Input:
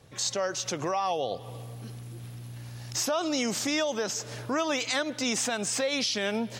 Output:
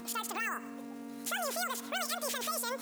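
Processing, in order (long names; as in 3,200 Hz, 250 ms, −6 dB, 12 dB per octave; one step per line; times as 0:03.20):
upward compression, threshold −38 dBFS
hum with harmonics 100 Hz, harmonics 12, −41 dBFS −8 dB per octave
wrong playback speed 33 rpm record played at 78 rpm
bad sample-rate conversion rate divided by 2×, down none, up hold
level −6.5 dB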